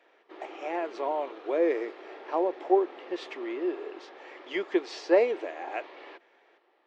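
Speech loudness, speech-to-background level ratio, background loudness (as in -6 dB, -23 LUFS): -30.0 LUFS, 17.0 dB, -47.0 LUFS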